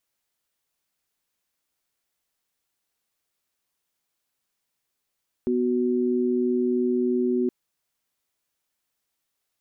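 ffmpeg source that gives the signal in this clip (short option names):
-f lavfi -i "aevalsrc='0.0708*(sin(2*PI*246.94*t)+sin(2*PI*369.99*t))':d=2.02:s=44100"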